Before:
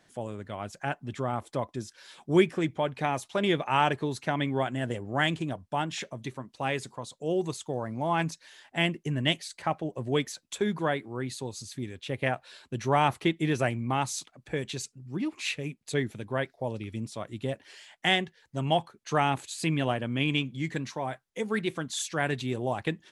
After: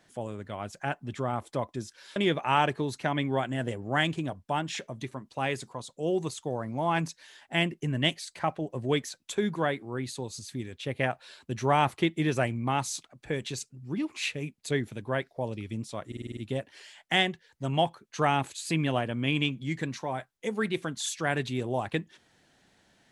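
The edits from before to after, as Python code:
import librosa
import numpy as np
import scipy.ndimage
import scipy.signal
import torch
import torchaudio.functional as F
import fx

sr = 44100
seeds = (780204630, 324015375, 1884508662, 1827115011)

y = fx.edit(x, sr, fx.cut(start_s=2.16, length_s=1.23),
    fx.stutter(start_s=17.3, slice_s=0.05, count=7), tone=tone)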